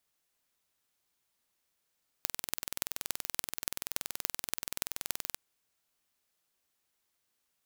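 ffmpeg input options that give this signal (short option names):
-f lavfi -i "aevalsrc='0.794*eq(mod(n,2100),0)*(0.5+0.5*eq(mod(n,12600),0))':d=3.13:s=44100"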